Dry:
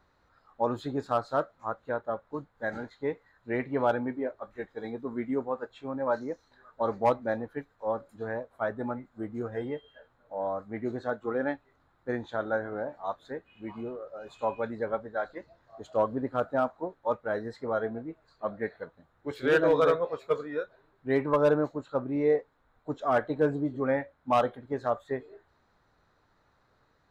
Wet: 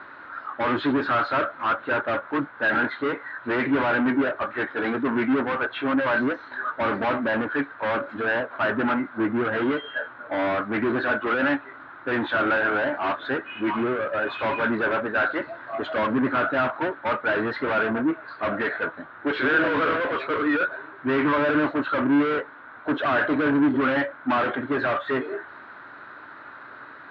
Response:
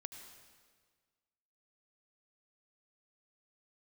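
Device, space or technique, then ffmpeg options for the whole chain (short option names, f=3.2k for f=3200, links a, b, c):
overdrive pedal into a guitar cabinet: -filter_complex "[0:a]asplit=2[a][b];[b]highpass=f=720:p=1,volume=35dB,asoftclip=type=tanh:threshold=-14.5dB[c];[a][c]amix=inputs=2:normalize=0,lowpass=f=1.7k:p=1,volume=-6dB,highpass=110,equalizer=f=180:t=q:w=4:g=-7,equalizer=f=290:t=q:w=4:g=5,equalizer=f=480:t=q:w=4:g=-8,equalizer=f=770:t=q:w=4:g=-6,equalizer=f=1.5k:t=q:w=4:g=8,lowpass=f=3.5k:w=0.5412,lowpass=f=3.5k:w=1.3066"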